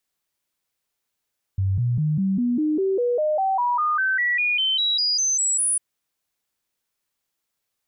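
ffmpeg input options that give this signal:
ffmpeg -f lavfi -i "aevalsrc='0.119*clip(min(mod(t,0.2),0.2-mod(t,0.2))/0.005,0,1)*sin(2*PI*96.3*pow(2,floor(t/0.2)/3)*mod(t,0.2))':duration=4.2:sample_rate=44100" out.wav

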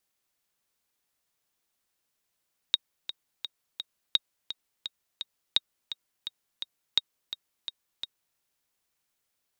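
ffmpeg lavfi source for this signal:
ffmpeg -f lavfi -i "aevalsrc='pow(10,(-8-12.5*gte(mod(t,4*60/170),60/170))/20)*sin(2*PI*3760*mod(t,60/170))*exp(-6.91*mod(t,60/170)/0.03)':duration=5.64:sample_rate=44100" out.wav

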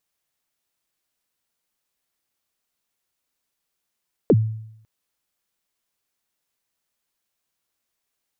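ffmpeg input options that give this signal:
ffmpeg -f lavfi -i "aevalsrc='0.355*pow(10,-3*t/0.75)*sin(2*PI*(540*0.048/log(110/540)*(exp(log(110/540)*min(t,0.048)/0.048)-1)+110*max(t-0.048,0)))':duration=0.55:sample_rate=44100" out.wav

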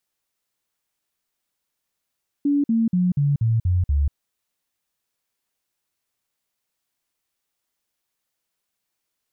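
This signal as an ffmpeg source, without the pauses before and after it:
ffmpeg -f lavfi -i "aevalsrc='0.158*clip(min(mod(t,0.24),0.19-mod(t,0.24))/0.005,0,1)*sin(2*PI*286*pow(2,-floor(t/0.24)/3)*mod(t,0.24))':duration=1.68:sample_rate=44100" out.wav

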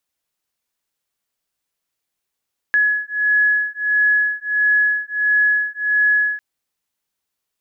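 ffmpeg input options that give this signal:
ffmpeg -f lavfi -i "aevalsrc='0.133*(sin(2*PI*1690*t)+sin(2*PI*1691.5*t))':duration=3.65:sample_rate=44100" out.wav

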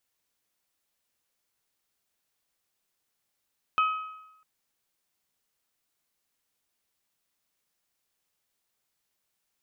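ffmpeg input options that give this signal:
ffmpeg -f lavfi -i "aevalsrc='0.112*pow(10,-3*t/0.92)*sin(2*PI*1270*t)+0.0398*pow(10,-3*t/0.747)*sin(2*PI*2540*t)+0.0141*pow(10,-3*t/0.707)*sin(2*PI*3048*t)':duration=0.65:sample_rate=44100" out.wav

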